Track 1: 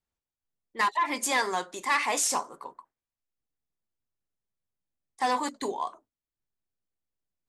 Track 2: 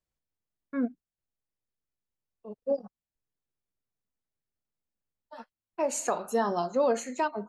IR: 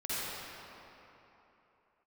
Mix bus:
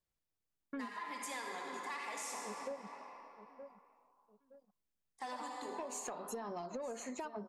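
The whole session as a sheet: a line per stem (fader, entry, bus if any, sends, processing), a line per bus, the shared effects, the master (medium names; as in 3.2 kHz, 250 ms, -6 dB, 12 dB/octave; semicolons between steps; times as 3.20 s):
-16.5 dB, 0.00 s, send -3 dB, no echo send, none
-2.0 dB, 0.00 s, no send, echo send -16 dB, compression, threshold -30 dBFS, peak gain reduction 9 dB; saturation -25.5 dBFS, distortion -19 dB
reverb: on, RT60 3.4 s, pre-delay 45 ms
echo: feedback delay 918 ms, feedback 36%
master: compression, threshold -40 dBFS, peak gain reduction 9.5 dB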